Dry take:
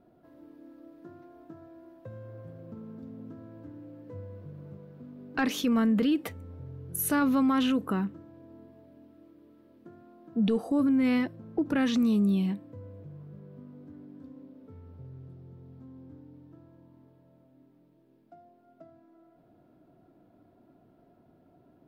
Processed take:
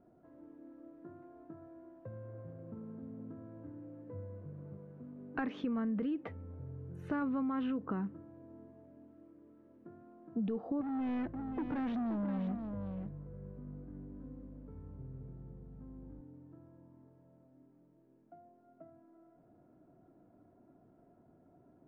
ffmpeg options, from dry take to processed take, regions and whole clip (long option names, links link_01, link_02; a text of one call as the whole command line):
ffmpeg -i in.wav -filter_complex "[0:a]asettb=1/sr,asplit=3[link_01][link_02][link_03];[link_01]atrim=end=10.814[link_04];[link_02]atrim=start=10.81:end=16.21,asetpts=PTS-STARTPTS,afade=type=in:duration=0.004:curve=qsin,afade=type=out:start_time=5.396:duration=0.004:curve=qsin,aeval=exprs='val(0)+0.00398*(sin(2*PI*50*n/s)+sin(2*PI*2*50*n/s)/2+sin(2*PI*3*50*n/s)/3+sin(2*PI*4*50*n/s)/4+sin(2*PI*5*50*n/s)/5)':channel_layout=same,volume=29.5dB,asoftclip=hard,volume=-29.5dB,aecho=1:1:526:0.422,atrim=end_sample=238140[link_05];[link_03]atrim=start=16.206[link_06];[link_04][link_05]acrossfade=duration=0.004:curve1=hsin:curve2=qsin[link_07];[link_07][link_06]acrossfade=duration=0.004:curve1=qsin:curve2=hsin,lowpass=1900,aemphasis=mode=reproduction:type=50fm,acompressor=threshold=-29dB:ratio=6,volume=-3.5dB" out.wav